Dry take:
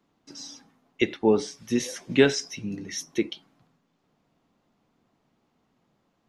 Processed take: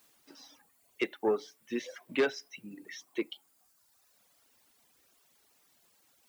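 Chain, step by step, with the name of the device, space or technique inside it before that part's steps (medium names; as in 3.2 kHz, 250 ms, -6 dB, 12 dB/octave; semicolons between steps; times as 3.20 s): tape answering machine (band-pass 370–3000 Hz; saturation -16.5 dBFS, distortion -14 dB; wow and flutter 19 cents; white noise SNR 27 dB); high-pass 43 Hz; reverb removal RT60 1.4 s; trim -3 dB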